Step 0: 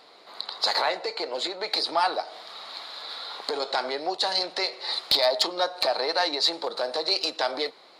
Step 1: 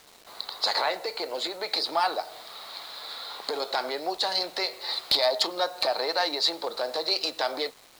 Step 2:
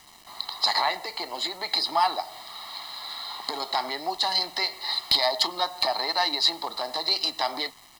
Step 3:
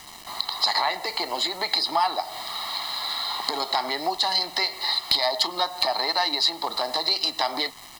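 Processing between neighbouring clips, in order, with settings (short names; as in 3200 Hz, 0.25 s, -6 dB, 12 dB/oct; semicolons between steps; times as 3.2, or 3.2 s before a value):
requantised 8-bit, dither none; gain -1.5 dB
comb 1 ms, depth 75%
compressor 2:1, threshold -34 dBFS, peak gain reduction 10 dB; gain +8.5 dB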